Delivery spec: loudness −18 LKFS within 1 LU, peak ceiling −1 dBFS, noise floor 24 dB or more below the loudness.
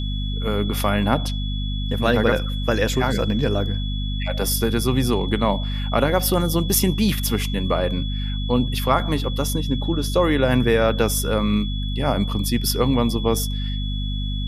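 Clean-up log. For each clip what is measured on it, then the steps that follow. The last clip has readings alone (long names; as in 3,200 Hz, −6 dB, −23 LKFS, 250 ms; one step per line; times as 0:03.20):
mains hum 50 Hz; hum harmonics up to 250 Hz; level of the hum −22 dBFS; interfering tone 3,400 Hz; level of the tone −33 dBFS; integrated loudness −21.5 LKFS; sample peak −4.0 dBFS; target loudness −18.0 LKFS
→ hum removal 50 Hz, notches 5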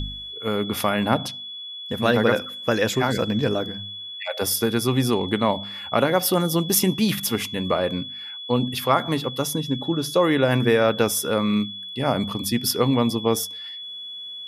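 mains hum none found; interfering tone 3,400 Hz; level of the tone −33 dBFS
→ notch filter 3,400 Hz, Q 30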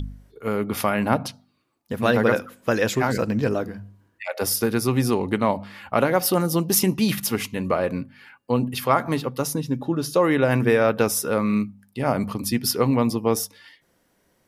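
interfering tone none found; integrated loudness −23.0 LKFS; sample peak −4.5 dBFS; target loudness −18.0 LKFS
→ level +5 dB
brickwall limiter −1 dBFS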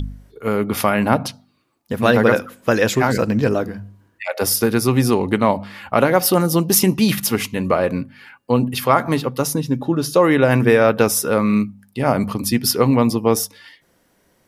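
integrated loudness −18.0 LKFS; sample peak −1.0 dBFS; background noise floor −61 dBFS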